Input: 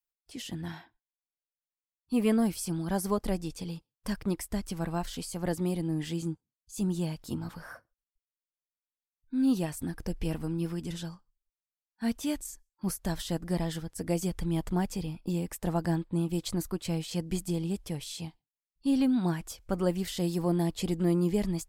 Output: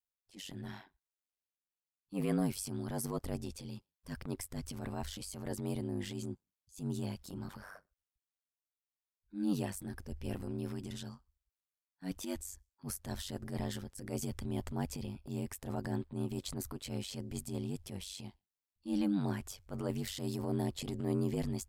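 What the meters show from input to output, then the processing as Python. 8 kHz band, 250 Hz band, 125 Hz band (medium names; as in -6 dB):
-5.0 dB, -8.0 dB, -6.5 dB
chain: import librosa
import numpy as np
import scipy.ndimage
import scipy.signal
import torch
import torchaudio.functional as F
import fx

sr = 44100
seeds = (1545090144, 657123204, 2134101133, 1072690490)

y = fx.transient(x, sr, attack_db=-10, sustain_db=3)
y = y * np.sin(2.0 * np.pi * 48.0 * np.arange(len(y)) / sr)
y = F.gain(torch.from_numpy(y), -3.0).numpy()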